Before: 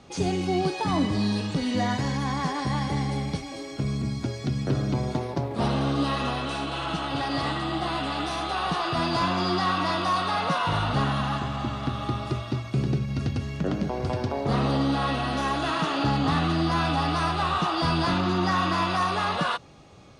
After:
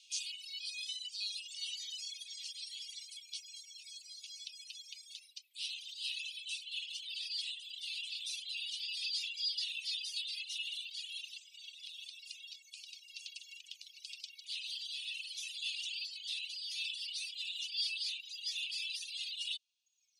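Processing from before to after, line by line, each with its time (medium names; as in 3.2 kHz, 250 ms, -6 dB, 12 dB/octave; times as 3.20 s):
12.68–15.01 s: frequency-shifting echo 153 ms, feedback 49%, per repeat +43 Hz, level -6 dB
whole clip: reverb removal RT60 1.6 s; steep high-pass 2.6 kHz 72 dB/octave; reverb removal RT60 1.8 s; trim +1 dB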